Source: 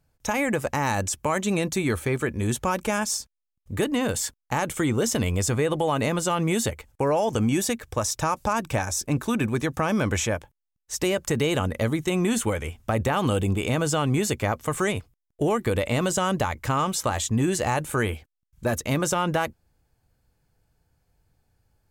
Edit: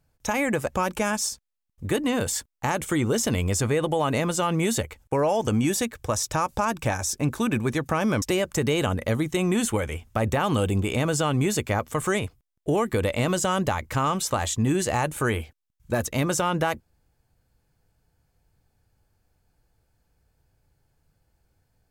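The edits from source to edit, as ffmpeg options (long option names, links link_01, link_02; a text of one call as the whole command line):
ffmpeg -i in.wav -filter_complex "[0:a]asplit=3[link_01][link_02][link_03];[link_01]atrim=end=0.732[link_04];[link_02]atrim=start=2.608:end=10.102[link_05];[link_03]atrim=start=10.948[link_06];[link_04][link_05]acrossfade=duration=0.004:curve1=hsin:curve2=hsin[link_07];[link_07][link_06]acrossfade=duration=0.004:curve1=hsin:curve2=hsin" out.wav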